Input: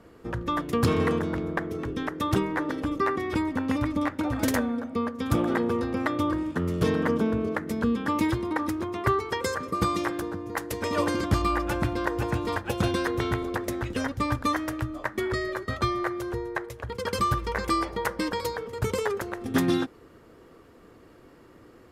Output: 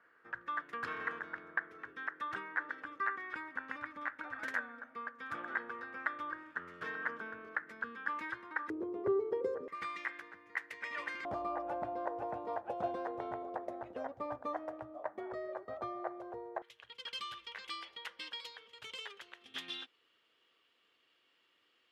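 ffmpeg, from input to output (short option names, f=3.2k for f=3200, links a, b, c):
-af "asetnsamples=n=441:p=0,asendcmd='8.7 bandpass f 440;9.68 bandpass f 2000;11.25 bandpass f 690;16.62 bandpass f 3100',bandpass=f=1.6k:t=q:w=4.4:csg=0"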